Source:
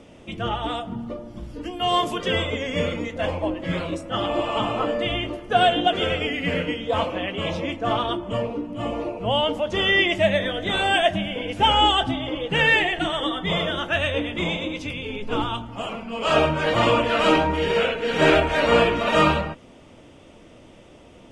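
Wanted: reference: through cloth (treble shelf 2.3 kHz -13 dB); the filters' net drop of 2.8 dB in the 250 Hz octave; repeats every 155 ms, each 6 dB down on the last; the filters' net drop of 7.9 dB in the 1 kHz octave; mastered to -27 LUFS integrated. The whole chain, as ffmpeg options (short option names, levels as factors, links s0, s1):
-af "equalizer=f=250:t=o:g=-3,equalizer=f=1000:t=o:g=-8.5,highshelf=f=2300:g=-13,aecho=1:1:155|310|465|620|775|930:0.501|0.251|0.125|0.0626|0.0313|0.0157,volume=0.944"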